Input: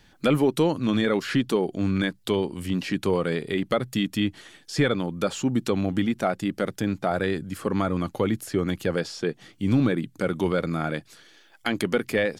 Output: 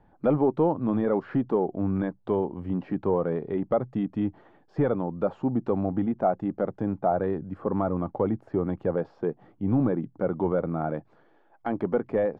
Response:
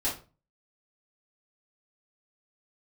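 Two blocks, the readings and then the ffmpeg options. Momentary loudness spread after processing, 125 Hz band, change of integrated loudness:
6 LU, -2.5 dB, -2.0 dB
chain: -af "asoftclip=type=tanh:threshold=0.335,lowpass=f=840:t=q:w=2,volume=0.75"

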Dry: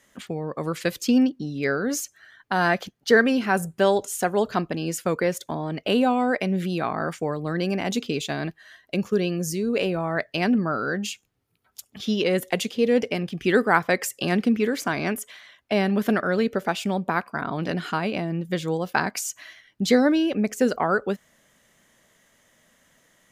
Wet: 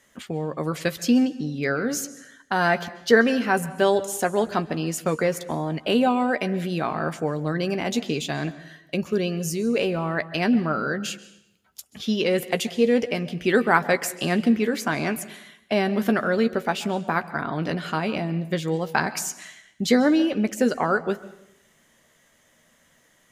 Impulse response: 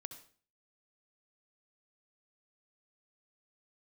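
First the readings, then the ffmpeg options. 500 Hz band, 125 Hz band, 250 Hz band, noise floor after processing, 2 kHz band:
+0.5 dB, +0.5 dB, +0.5 dB, -61 dBFS, +0.5 dB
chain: -filter_complex "[0:a]asplit=2[s0][s1];[1:a]atrim=start_sample=2205,asetrate=23814,aresample=44100,adelay=13[s2];[s1][s2]afir=irnorm=-1:irlink=0,volume=0.376[s3];[s0][s3]amix=inputs=2:normalize=0"

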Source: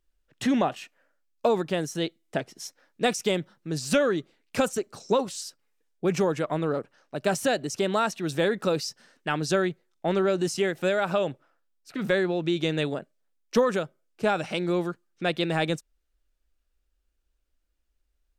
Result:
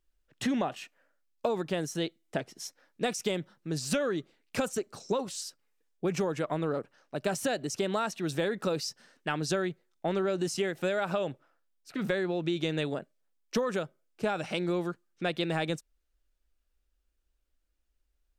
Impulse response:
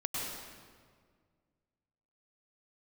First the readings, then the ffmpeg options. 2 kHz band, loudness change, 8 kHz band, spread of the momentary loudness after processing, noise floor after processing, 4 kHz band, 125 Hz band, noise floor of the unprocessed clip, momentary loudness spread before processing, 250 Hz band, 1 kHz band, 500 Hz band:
-5.5 dB, -5.0 dB, -3.0 dB, 8 LU, -76 dBFS, -4.5 dB, -4.0 dB, -75 dBFS, 10 LU, -4.5 dB, -6.0 dB, -5.5 dB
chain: -af "acompressor=threshold=0.0631:ratio=4,volume=0.794"

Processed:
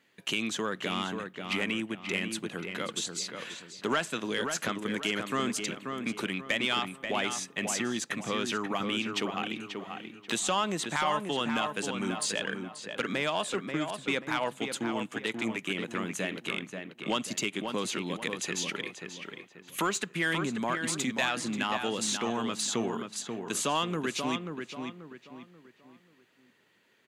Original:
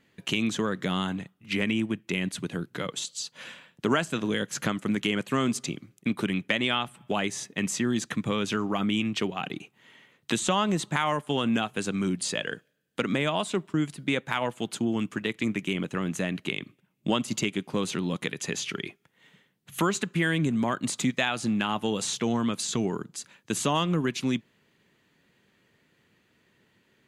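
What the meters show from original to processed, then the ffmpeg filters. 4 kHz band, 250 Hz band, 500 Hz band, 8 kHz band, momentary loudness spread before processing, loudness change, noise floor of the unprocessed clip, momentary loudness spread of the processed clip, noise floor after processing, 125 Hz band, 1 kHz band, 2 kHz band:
-1.0 dB, -6.0 dB, -2.5 dB, 0.0 dB, 8 LU, -3.0 dB, -69 dBFS, 9 LU, -62 dBFS, -9.0 dB, -1.0 dB, -0.5 dB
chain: -filter_complex "[0:a]highpass=f=470:p=1,asoftclip=type=tanh:threshold=0.133,asplit=2[s0][s1];[s1]adelay=535,lowpass=f=2600:p=1,volume=0.531,asplit=2[s2][s3];[s3]adelay=535,lowpass=f=2600:p=1,volume=0.37,asplit=2[s4][s5];[s5]adelay=535,lowpass=f=2600:p=1,volume=0.37,asplit=2[s6][s7];[s7]adelay=535,lowpass=f=2600:p=1,volume=0.37[s8];[s0][s2][s4][s6][s8]amix=inputs=5:normalize=0"

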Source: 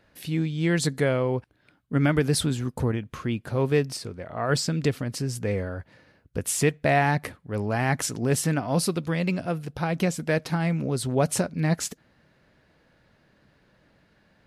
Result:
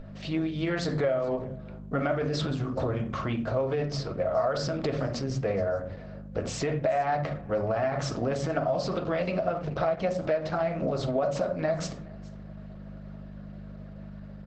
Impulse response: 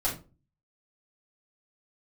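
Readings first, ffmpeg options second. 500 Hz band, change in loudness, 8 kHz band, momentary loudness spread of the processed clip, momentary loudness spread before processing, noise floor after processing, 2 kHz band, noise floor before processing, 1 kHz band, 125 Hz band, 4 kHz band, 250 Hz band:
+0.5 dB, -3.0 dB, -13.5 dB, 17 LU, 8 LU, -43 dBFS, -7.0 dB, -64 dBFS, -1.0 dB, -6.0 dB, -5.0 dB, -5.0 dB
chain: -filter_complex "[0:a]aeval=exprs='val(0)+0.0126*(sin(2*PI*50*n/s)+sin(2*PI*2*50*n/s)/2+sin(2*PI*3*50*n/s)/3+sin(2*PI*4*50*n/s)/4+sin(2*PI*5*50*n/s)/5)':c=same,asplit=2[s0][s1];[1:a]atrim=start_sample=2205,asetrate=37044,aresample=44100,highshelf=f=4100:g=-10[s2];[s1][s2]afir=irnorm=-1:irlink=0,volume=0.355[s3];[s0][s3]amix=inputs=2:normalize=0,alimiter=limit=0.211:level=0:latency=1:release=16,superequalizer=8b=3.55:10b=2,acompressor=threshold=0.0794:ratio=12,lowpass=f=5800:w=0.5412,lowpass=f=5800:w=1.3066,lowshelf=f=210:g=-5.5,aecho=1:1:422:0.075" -ar 48000 -c:a libopus -b:a 12k

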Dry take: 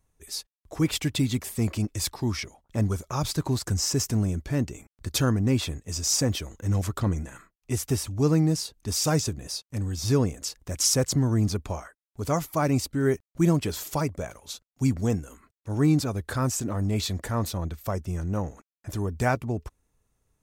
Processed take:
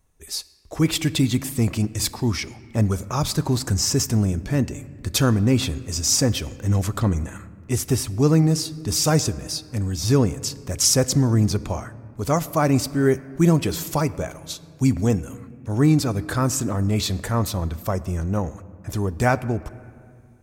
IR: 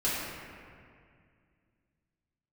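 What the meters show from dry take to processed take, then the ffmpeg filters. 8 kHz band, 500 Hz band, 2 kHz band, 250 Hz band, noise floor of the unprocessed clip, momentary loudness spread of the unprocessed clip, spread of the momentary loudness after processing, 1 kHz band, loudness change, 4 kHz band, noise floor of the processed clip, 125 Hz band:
+5.0 dB, +5.0 dB, +5.0 dB, +5.0 dB, under -85 dBFS, 11 LU, 12 LU, +5.0 dB, +5.0 dB, +5.0 dB, -47 dBFS, +5.0 dB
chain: -filter_complex "[0:a]asplit=2[s0][s1];[1:a]atrim=start_sample=2205[s2];[s1][s2]afir=irnorm=-1:irlink=0,volume=0.0596[s3];[s0][s3]amix=inputs=2:normalize=0,volume=1.68"

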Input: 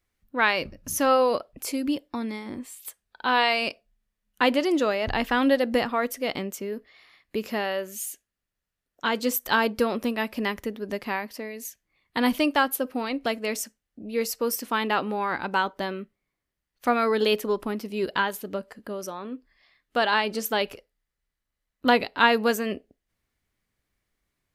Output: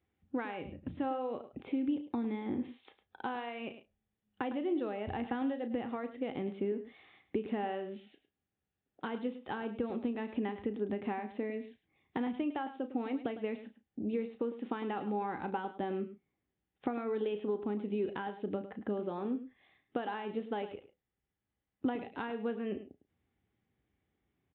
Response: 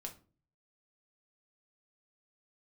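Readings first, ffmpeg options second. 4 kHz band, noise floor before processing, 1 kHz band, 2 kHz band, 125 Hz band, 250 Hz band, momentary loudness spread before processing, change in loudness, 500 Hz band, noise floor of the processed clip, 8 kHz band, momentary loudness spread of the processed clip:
-22.5 dB, -84 dBFS, -13.5 dB, -19.5 dB, -5.0 dB, -7.0 dB, 14 LU, -11.5 dB, -10.5 dB, under -85 dBFS, under -40 dB, 8 LU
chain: -filter_complex "[0:a]asplit=2[s0][s1];[s1]adelay=34,volume=0.251[s2];[s0][s2]amix=inputs=2:normalize=0,acompressor=threshold=0.0224:ratio=12,highpass=f=64:w=0.5412,highpass=f=64:w=1.3066,aresample=8000,aresample=44100,lowshelf=f=520:t=q:w=1.5:g=7.5,asplit=2[s3][s4];[s4]adelay=105,volume=0.224,highshelf=f=4000:g=-2.36[s5];[s3][s5]amix=inputs=2:normalize=0,acrossover=split=2900[s6][s7];[s7]acompressor=threshold=0.00178:ratio=4:attack=1:release=60[s8];[s6][s8]amix=inputs=2:normalize=0,equalizer=f=790:t=o:w=0.22:g=14,volume=0.531"

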